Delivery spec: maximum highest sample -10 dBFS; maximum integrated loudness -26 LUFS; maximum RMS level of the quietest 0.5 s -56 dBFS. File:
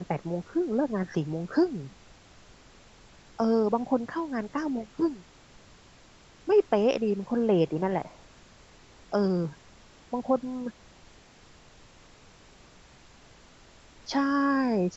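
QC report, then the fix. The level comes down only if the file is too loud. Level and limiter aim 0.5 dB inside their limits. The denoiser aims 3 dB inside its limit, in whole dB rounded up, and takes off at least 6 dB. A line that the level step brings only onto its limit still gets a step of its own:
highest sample -11.0 dBFS: OK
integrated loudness -28.0 LUFS: OK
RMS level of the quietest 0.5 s -55 dBFS: fail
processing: denoiser 6 dB, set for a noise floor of -55 dBFS

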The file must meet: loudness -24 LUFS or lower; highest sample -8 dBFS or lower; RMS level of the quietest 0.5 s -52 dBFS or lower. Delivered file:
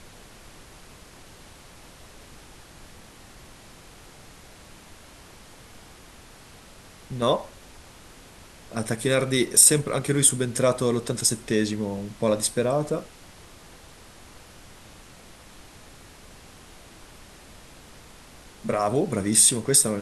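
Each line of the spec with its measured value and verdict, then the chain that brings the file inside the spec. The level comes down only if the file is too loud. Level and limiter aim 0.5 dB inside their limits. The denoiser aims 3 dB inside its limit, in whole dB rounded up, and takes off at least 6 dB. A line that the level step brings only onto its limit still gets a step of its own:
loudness -21.5 LUFS: fail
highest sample -2.0 dBFS: fail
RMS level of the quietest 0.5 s -48 dBFS: fail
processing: denoiser 6 dB, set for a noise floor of -48 dBFS; gain -3 dB; limiter -8.5 dBFS

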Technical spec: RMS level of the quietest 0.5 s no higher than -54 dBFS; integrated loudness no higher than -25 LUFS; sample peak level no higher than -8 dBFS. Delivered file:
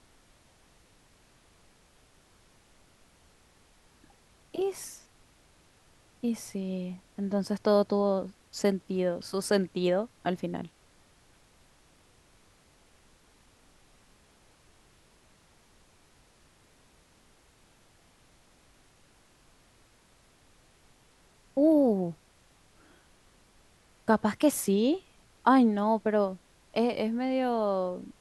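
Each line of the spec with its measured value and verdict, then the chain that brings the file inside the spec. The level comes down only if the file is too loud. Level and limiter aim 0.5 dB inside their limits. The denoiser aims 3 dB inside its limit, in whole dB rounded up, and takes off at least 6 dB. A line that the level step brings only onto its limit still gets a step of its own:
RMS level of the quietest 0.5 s -62 dBFS: OK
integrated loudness -28.5 LUFS: OK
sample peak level -9.5 dBFS: OK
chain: none

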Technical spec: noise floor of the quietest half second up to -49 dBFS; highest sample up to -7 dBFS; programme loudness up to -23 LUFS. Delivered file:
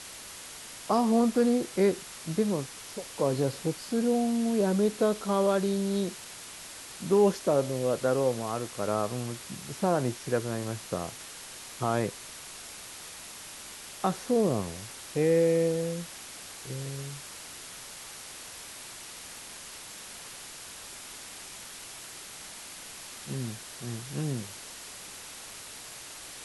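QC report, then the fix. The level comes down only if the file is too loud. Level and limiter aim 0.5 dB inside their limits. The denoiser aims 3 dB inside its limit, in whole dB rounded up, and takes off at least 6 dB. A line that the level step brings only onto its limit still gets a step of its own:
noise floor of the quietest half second -44 dBFS: fail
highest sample -12.5 dBFS: OK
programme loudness -29.0 LUFS: OK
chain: denoiser 8 dB, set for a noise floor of -44 dBFS

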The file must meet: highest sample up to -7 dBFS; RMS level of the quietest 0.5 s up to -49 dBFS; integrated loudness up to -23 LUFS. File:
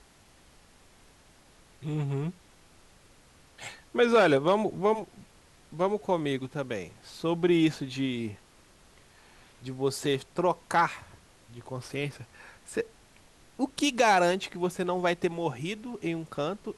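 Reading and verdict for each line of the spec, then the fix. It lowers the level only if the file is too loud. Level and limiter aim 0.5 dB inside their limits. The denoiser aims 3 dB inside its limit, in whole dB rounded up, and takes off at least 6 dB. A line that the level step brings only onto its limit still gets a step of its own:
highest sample -11.5 dBFS: OK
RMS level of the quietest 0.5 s -58 dBFS: OK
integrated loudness -28.5 LUFS: OK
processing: none

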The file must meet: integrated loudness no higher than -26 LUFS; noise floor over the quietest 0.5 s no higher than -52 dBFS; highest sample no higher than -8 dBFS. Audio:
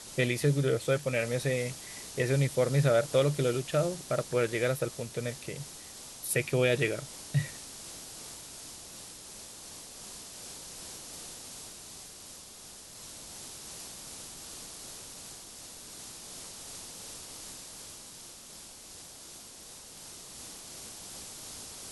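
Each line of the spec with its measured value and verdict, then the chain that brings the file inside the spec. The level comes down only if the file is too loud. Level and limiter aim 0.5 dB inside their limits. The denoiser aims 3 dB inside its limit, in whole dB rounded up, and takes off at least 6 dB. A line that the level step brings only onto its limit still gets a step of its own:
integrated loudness -33.5 LUFS: OK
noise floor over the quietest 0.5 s -49 dBFS: fail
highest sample -12.5 dBFS: OK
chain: denoiser 6 dB, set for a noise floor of -49 dBFS

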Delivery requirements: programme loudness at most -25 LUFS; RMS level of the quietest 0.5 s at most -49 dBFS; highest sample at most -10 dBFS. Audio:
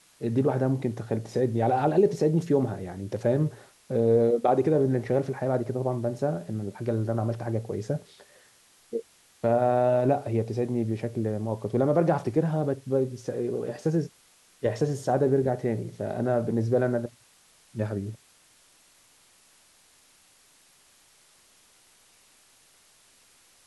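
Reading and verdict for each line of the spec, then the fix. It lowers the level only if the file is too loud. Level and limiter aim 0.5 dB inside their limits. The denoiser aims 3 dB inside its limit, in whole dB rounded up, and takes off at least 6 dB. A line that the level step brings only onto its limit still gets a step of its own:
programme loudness -27.0 LUFS: OK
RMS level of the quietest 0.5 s -60 dBFS: OK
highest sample -11.0 dBFS: OK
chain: none

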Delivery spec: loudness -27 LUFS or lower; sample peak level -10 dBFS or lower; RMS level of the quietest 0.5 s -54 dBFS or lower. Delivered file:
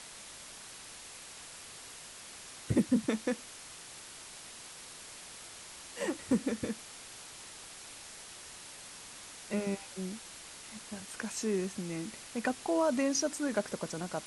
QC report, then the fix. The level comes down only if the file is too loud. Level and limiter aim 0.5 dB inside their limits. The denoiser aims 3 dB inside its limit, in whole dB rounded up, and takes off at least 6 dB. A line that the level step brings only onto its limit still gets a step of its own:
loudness -37.5 LUFS: OK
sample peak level -16.5 dBFS: OK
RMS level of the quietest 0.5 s -49 dBFS: fail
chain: denoiser 8 dB, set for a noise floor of -49 dBFS

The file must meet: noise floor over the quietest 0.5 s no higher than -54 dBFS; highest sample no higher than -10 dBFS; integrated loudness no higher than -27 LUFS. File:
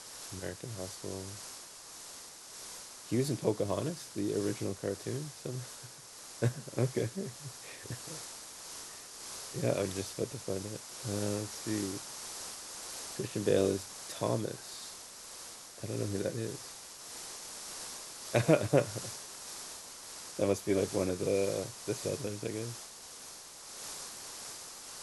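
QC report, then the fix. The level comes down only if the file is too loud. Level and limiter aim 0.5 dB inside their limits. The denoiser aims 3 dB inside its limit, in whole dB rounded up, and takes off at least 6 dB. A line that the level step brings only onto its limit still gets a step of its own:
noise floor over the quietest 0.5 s -50 dBFS: fail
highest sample -11.0 dBFS: OK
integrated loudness -36.5 LUFS: OK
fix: denoiser 7 dB, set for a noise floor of -50 dBFS

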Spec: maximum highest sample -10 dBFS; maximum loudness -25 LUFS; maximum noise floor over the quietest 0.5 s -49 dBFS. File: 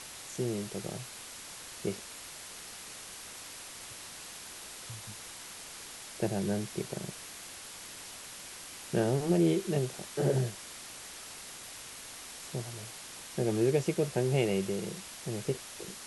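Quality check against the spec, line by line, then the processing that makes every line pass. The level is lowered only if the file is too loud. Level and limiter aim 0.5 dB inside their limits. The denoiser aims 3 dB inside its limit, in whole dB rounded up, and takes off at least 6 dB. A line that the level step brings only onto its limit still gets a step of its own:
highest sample -14.5 dBFS: OK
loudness -35.5 LUFS: OK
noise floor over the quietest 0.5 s -46 dBFS: fail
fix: denoiser 6 dB, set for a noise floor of -46 dBFS

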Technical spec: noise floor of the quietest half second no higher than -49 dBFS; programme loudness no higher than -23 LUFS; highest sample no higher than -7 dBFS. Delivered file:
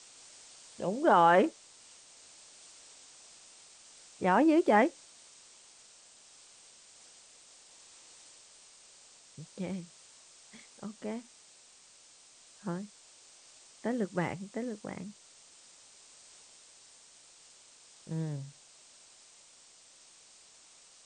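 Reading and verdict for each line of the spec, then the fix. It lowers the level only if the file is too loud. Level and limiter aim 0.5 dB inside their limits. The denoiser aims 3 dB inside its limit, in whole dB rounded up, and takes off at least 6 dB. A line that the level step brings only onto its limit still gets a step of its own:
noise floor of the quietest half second -59 dBFS: OK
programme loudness -30.5 LUFS: OK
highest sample -12.0 dBFS: OK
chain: none

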